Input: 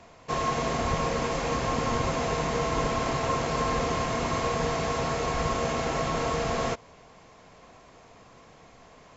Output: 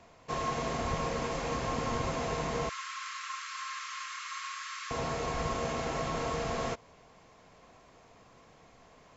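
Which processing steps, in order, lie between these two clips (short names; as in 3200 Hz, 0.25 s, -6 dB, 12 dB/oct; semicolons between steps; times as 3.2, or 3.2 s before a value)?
2.69–4.91 steep high-pass 1100 Hz 96 dB/oct; gain -5.5 dB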